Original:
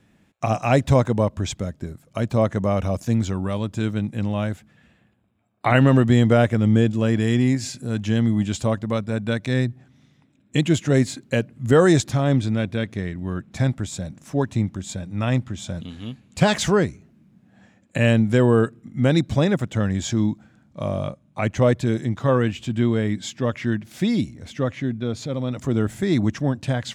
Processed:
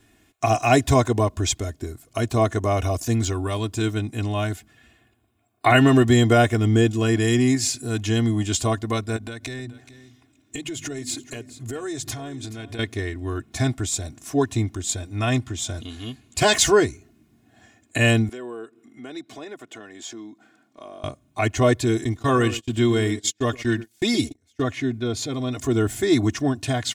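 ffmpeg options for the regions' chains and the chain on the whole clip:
-filter_complex "[0:a]asettb=1/sr,asplit=3[a][b][c];[a]atrim=end=9.164[d];[b]atrim=start=9.16:end=12.79,asetpts=PTS-STARTPTS,afade=t=in:d=0.004:c=qsin,afade=t=out:st=3.626:d=0.004:c=qsin,bandreject=f=50:t=h:w=6,bandreject=f=100:t=h:w=6,bandreject=f=150:t=h:w=6,bandreject=f=200:t=h:w=6,bandreject=f=250:t=h:w=6,acompressor=threshold=-29dB:ratio=12:attack=3.2:release=140:knee=1:detection=peak,aecho=1:1:427:0.158,atrim=end_sample=160083[e];[c]atrim=start=12.786[f];[d][e]acrossfade=d=0.004:c1=hsin:c2=qsin[g];[g][f]acrossfade=d=0.004:c1=qsin:c2=hsin,asettb=1/sr,asplit=3[h][i][j];[h]atrim=end=18.294[k];[i]atrim=start=18.29:end=21.04,asetpts=PTS-STARTPTS,afade=t=in:d=0.004:c=qsin,afade=t=out:st=2.746:d=0.004:c=qsin,highpass=f=160:w=0.5412,highpass=f=160:w=1.3066,bass=f=250:g=-8,treble=f=4k:g=-7,acompressor=threshold=-47dB:ratio=2:attack=3.2:release=140:knee=1:detection=peak[l];[j]atrim=start=21.036[m];[k][l]acrossfade=d=0.004:c1=hsin:c2=qsin[n];[n][m]acrossfade=d=0.004:c1=qsin:c2=hsin,asettb=1/sr,asplit=3[o][p][q];[o]atrim=end=22.044[r];[p]atrim=start=22.04:end=24.62,asetpts=PTS-STARTPTS,afade=t=in:d=0.004:c=qsin,afade=t=out:st=2.576:d=0.004:c=qsin,asplit=2[s][t];[t]adelay=117,lowpass=f=1.4k:p=1,volume=-13dB,asplit=2[u][v];[v]adelay=117,lowpass=f=1.4k:p=1,volume=0.23,asplit=2[w][x];[x]adelay=117,lowpass=f=1.4k:p=1,volume=0.23[y];[s][u][w][y]amix=inputs=4:normalize=0,atrim=end_sample=113778,agate=range=-31dB:threshold=-31dB:ratio=16:release=100:detection=peak,highshelf=f=3.9k:g=6.5[z];[q]atrim=start=24.616[aa];[r][z]acrossfade=d=0.004:c1=hsin:c2=qsin[ab];[ab][aa]acrossfade=d=0.004:c1=qsin:c2=hsin,highshelf=f=4.6k:g=10.5,aecho=1:1:2.8:0.91,volume=-1dB"

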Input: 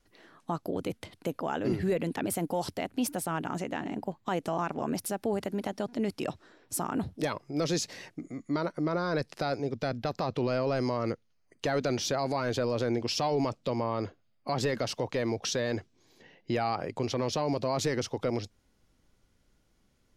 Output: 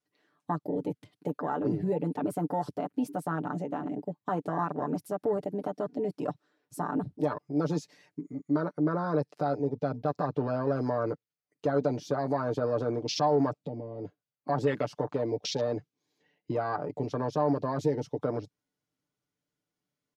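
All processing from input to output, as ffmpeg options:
-filter_complex "[0:a]asettb=1/sr,asplit=3[a][b][c];[a]atrim=end=13.644[d];[b]atrim=start=13.64:end=14.05,asetpts=PTS-STARTPTS,afade=t=in:d=0.004:c=qsin,afade=t=out:st=0.406:d=0.004:c=qsin,equalizer=f=170:w=0.49:g=10.5,acompressor=threshold=-42dB:ratio=2:attack=3.2:release=140:knee=1:detection=peak[e];[c]atrim=start=14.046[f];[d][e]acrossfade=d=0.004:c1=hsin:c2=qsin[g];[g][f]acrossfade=d=0.004:c1=qsin:c2=hsin,afwtdn=0.02,highpass=130,aecho=1:1:6.8:0.67"

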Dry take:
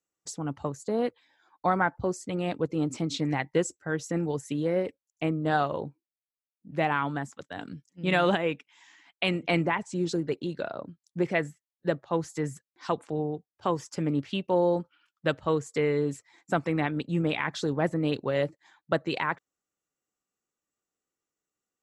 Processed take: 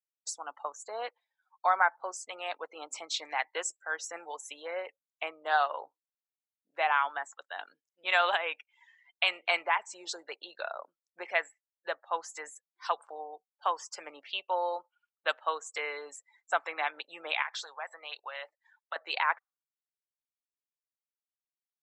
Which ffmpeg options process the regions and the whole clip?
-filter_complex "[0:a]asettb=1/sr,asplit=3[a][b][c];[a]atrim=end=17.424[d];[b]atrim=start=17.42:end=18.96,asetpts=PTS-STARTPTS,afade=t=in:d=0.004:c=qsin,afade=t=out:st=1.536:d=0.004:c=qsin,highpass=790,acompressor=threshold=-37dB:ratio=2:attack=3.2:release=140:knee=1:detection=peak[e];[c]atrim=start=18.956[f];[d][e]acrossfade=d=0.004:c1=hsin:c2=qsin[g];[g][f]acrossfade=d=0.004:c1=qsin:c2=hsin,afftdn=nr=25:nf=-51,highpass=f=730:w=0.5412,highpass=f=730:w=1.3066,bandreject=f=1.9k:w=22,volume=2dB"

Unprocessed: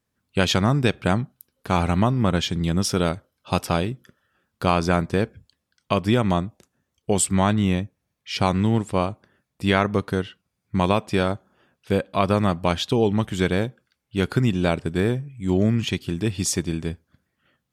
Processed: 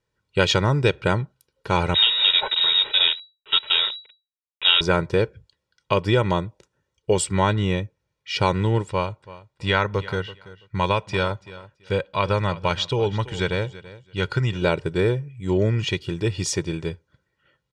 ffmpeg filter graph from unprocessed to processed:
-filter_complex "[0:a]asettb=1/sr,asplit=3[a][b][c];[a]atrim=end=1.944[d];[b]atrim=start=1.94:end=4.81,asetpts=PTS-STARTPTS,afade=t=in:d=0.004:c=qsin,afade=t=out:st=2.866:d=0.004:c=qsin,aecho=1:1:4.3:0.52,atrim=end_sample=126567,acrusher=bits=5:dc=4:mix=0:aa=0.000001,lowpass=f=3.3k:t=q:w=0.5098,lowpass=f=3.3k:t=q:w=0.6013,lowpass=f=3.3k:t=q:w=0.9,lowpass=f=3.3k:t=q:w=2.563,afreqshift=-3900[e];[c]atrim=start=4.806[f];[d][e]acrossfade=d=0.004:c1=hsin:c2=qsin[g];[g][f]acrossfade=d=0.004:c1=qsin:c2=hsin,asettb=1/sr,asplit=3[h][i][j];[h]atrim=end=8.894[k];[i]atrim=start=8.89:end=14.62,asetpts=PTS-STARTPTS,afade=t=in:d=0.004:c=qsin,afade=t=out:st=5.726:d=0.004:c=qsin,lowpass=8.8k,equalizer=f=350:w=0.87:g=-6.5,aecho=1:1:333|666:0.133|0.024,atrim=end_sample=252693[l];[j]atrim=start=14.616[m];[k][l]acrossfade=d=0.004:c1=hsin:c2=qsin[n];[n][m]acrossfade=d=0.004:c1=qsin:c2=hsin,lowpass=6.1k,equalizer=f=79:w=4.6:g=-7.5,aecho=1:1:2.1:0.7"

